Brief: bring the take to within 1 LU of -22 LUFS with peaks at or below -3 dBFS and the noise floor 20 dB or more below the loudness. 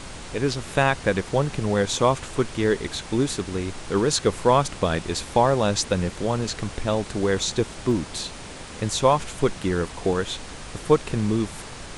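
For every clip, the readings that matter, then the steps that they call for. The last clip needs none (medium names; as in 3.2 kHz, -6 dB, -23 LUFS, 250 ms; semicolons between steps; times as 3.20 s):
dropouts 1; longest dropout 1.3 ms; noise floor -39 dBFS; noise floor target -44 dBFS; loudness -24.0 LUFS; peak level -5.5 dBFS; loudness target -22.0 LUFS
-> interpolate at 7.91 s, 1.3 ms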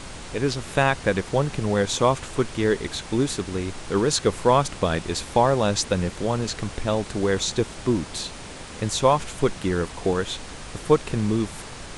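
dropouts 0; noise floor -39 dBFS; noise floor target -44 dBFS
-> noise print and reduce 6 dB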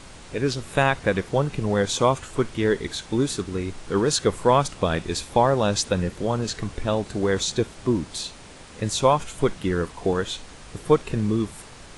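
noise floor -44 dBFS; loudness -24.0 LUFS; peak level -5.5 dBFS; loudness target -22.0 LUFS
-> trim +2 dB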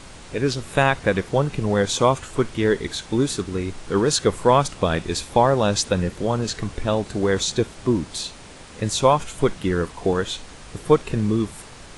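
loudness -22.0 LUFS; peak level -3.5 dBFS; noise floor -42 dBFS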